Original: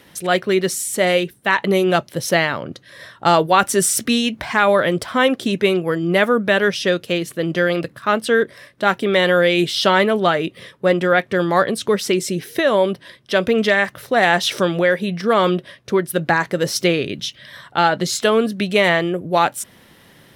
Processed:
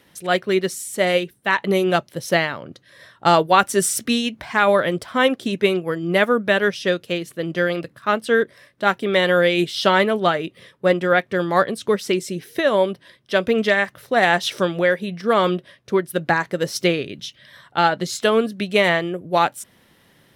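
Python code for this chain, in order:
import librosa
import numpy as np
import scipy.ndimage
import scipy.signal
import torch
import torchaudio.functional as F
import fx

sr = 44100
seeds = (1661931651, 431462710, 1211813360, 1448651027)

y = fx.upward_expand(x, sr, threshold_db=-25.0, expansion=1.5)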